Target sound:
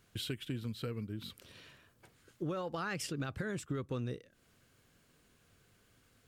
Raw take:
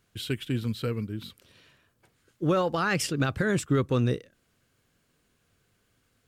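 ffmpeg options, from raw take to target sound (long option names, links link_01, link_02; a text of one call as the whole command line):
ffmpeg -i in.wav -af "acompressor=threshold=-40dB:ratio=4,volume=2dB" out.wav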